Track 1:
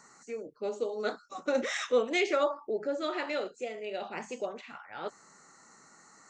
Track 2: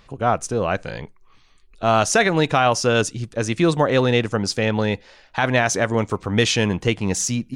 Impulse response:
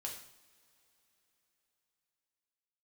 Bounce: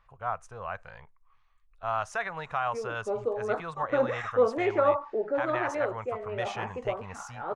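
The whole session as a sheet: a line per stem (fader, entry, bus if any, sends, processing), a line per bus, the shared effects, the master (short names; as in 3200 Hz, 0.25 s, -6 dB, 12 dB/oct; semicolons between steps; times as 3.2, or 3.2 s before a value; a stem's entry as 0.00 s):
0.0 dB, 2.45 s, no send, dry
-6.0 dB, 0.00 s, no send, passive tone stack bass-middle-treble 10-0-10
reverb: off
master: EQ curve 240 Hz 0 dB, 1100 Hz +7 dB, 4400 Hz -19 dB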